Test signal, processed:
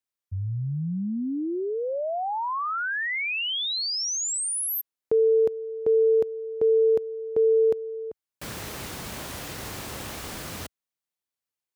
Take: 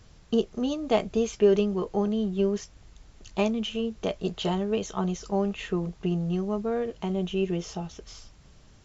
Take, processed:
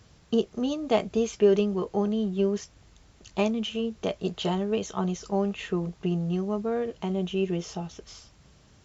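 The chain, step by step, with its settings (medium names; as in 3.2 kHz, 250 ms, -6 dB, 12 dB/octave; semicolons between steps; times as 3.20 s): high-pass 61 Hz 12 dB/octave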